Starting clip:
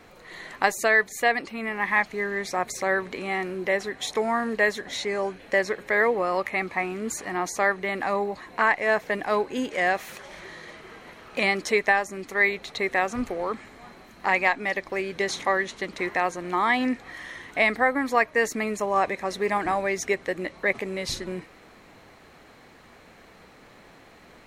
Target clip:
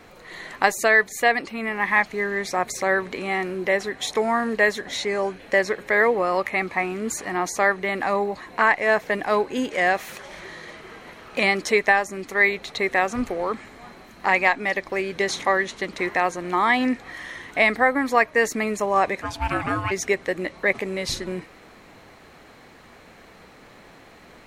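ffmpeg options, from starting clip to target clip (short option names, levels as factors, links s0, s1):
-filter_complex "[0:a]asplit=3[s0][s1][s2];[s0]afade=t=out:st=19.21:d=0.02[s3];[s1]aeval=exprs='val(0)*sin(2*PI*480*n/s)':c=same,afade=t=in:st=19.21:d=0.02,afade=t=out:st=19.9:d=0.02[s4];[s2]afade=t=in:st=19.9:d=0.02[s5];[s3][s4][s5]amix=inputs=3:normalize=0,volume=1.41"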